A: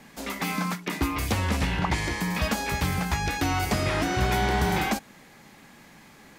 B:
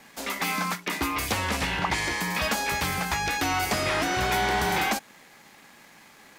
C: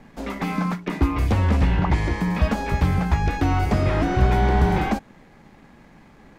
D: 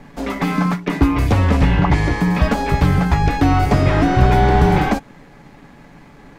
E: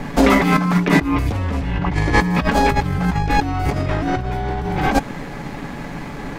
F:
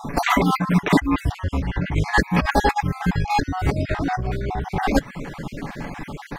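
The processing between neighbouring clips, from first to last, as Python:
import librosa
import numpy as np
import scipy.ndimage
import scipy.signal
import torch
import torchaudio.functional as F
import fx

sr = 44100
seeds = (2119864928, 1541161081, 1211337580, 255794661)

y1 = fx.low_shelf(x, sr, hz=300.0, db=-12.0)
y1 = fx.leveller(y1, sr, passes=1)
y2 = fx.tilt_eq(y1, sr, slope=-4.5)
y3 = y2 + 0.34 * np.pad(y2, (int(7.0 * sr / 1000.0), 0))[:len(y2)]
y3 = y3 * librosa.db_to_amplitude(6.0)
y4 = fx.over_compress(y3, sr, threshold_db=-24.0, ratio=-1.0)
y4 = y4 * librosa.db_to_amplitude(5.5)
y5 = fx.spec_dropout(y4, sr, seeds[0], share_pct=39)
y5 = fx.dereverb_blind(y5, sr, rt60_s=0.51)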